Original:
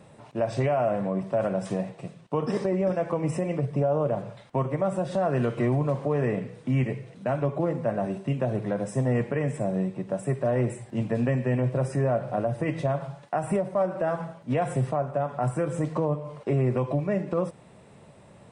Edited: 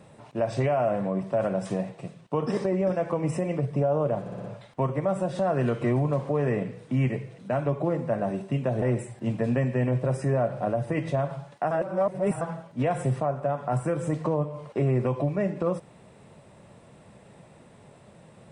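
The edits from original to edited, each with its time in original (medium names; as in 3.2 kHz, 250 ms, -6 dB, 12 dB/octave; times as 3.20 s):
4.20 s: stutter 0.06 s, 5 plays
8.58–10.53 s: delete
13.42–14.12 s: reverse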